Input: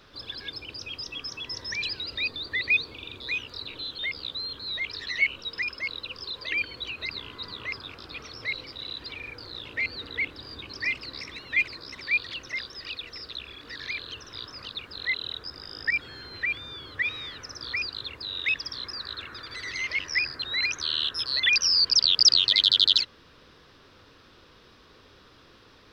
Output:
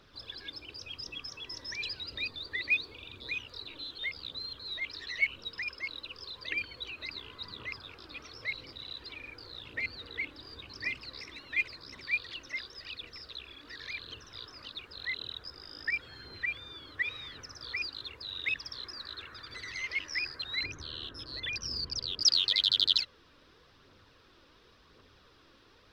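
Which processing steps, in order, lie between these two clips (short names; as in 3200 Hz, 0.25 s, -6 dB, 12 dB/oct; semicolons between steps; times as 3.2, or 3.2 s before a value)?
phaser 0.92 Hz, delay 3.7 ms, feedback 35%; 20.63–22.23 tilt shelf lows +9 dB, about 710 Hz; gain -7 dB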